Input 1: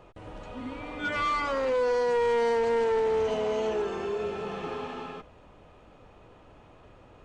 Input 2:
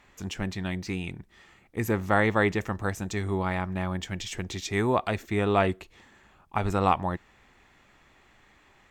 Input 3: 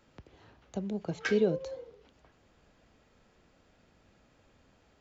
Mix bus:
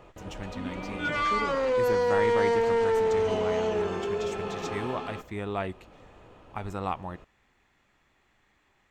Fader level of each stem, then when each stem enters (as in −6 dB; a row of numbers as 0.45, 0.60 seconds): +1.0, −8.5, −9.0 decibels; 0.00, 0.00, 0.00 seconds